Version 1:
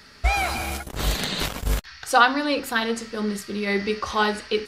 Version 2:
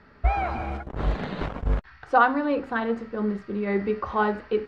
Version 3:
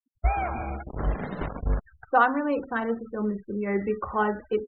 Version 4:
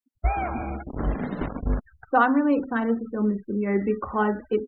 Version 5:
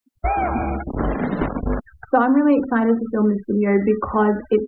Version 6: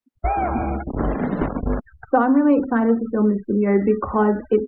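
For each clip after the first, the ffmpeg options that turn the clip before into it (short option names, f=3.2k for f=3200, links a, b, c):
-af "lowpass=1.3k"
-af "afftfilt=real='re*gte(hypot(re,im),0.0178)':imag='im*gte(hypot(re,im),0.0178)':win_size=1024:overlap=0.75,volume=-1.5dB"
-af "equalizer=f=260:t=o:w=0.73:g=8.5"
-filter_complex "[0:a]acrossover=split=230|640|2500[a][b][c][d];[a]acompressor=threshold=-32dB:ratio=4[e];[b]acompressor=threshold=-24dB:ratio=4[f];[c]acompressor=threshold=-30dB:ratio=4[g];[d]acompressor=threshold=-58dB:ratio=4[h];[e][f][g][h]amix=inputs=4:normalize=0,volume=8.5dB"
-af "highshelf=f=2.8k:g=-11.5"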